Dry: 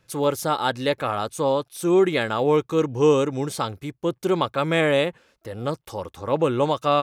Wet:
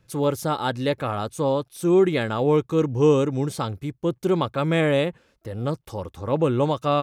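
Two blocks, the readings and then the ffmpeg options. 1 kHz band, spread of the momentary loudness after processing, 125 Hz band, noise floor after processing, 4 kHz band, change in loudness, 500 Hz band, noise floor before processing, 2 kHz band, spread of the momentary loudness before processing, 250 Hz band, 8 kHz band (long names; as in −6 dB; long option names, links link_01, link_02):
−2.5 dB, 11 LU, +4.0 dB, −64 dBFS, −3.5 dB, 0.0 dB, −0.5 dB, −67 dBFS, −3.0 dB, 11 LU, +1.5 dB, −3.5 dB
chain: -af "lowshelf=frequency=300:gain=9.5,volume=-3.5dB"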